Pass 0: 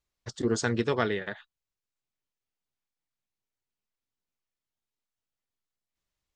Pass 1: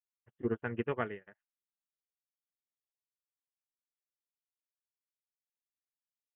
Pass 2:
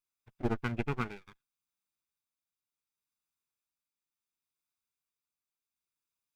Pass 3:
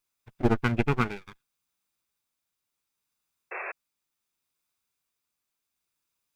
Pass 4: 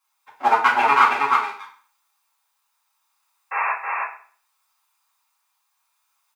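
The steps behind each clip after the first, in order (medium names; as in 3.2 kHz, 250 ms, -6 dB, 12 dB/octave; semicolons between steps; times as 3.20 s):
steep low-pass 3 kHz 96 dB/octave; upward expansion 2.5:1, over -47 dBFS; trim -4 dB
comb filter that takes the minimum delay 0.82 ms; dynamic bell 890 Hz, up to -6 dB, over -49 dBFS, Q 1.2; tremolo triangle 0.69 Hz, depth 40%; trim +5.5 dB
painted sound noise, 3.51–3.72 s, 350–2700 Hz -44 dBFS; trim +8.5 dB
resonant high-pass 970 Hz, resonance Q 4.2; delay 318 ms -3 dB; reverberation RT60 0.45 s, pre-delay 4 ms, DRR -6 dB; trim +2 dB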